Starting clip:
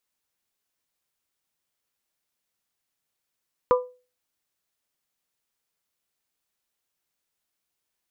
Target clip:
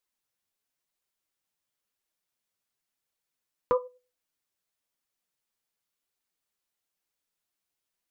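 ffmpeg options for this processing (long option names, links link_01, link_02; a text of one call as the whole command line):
ffmpeg -i in.wav -af "flanger=delay=1.7:depth=9.8:regen=44:speed=0.98:shape=triangular" out.wav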